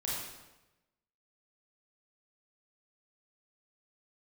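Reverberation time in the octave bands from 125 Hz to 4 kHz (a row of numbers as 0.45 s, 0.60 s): 1.2 s, 1.0 s, 1.0 s, 1.0 s, 0.95 s, 0.85 s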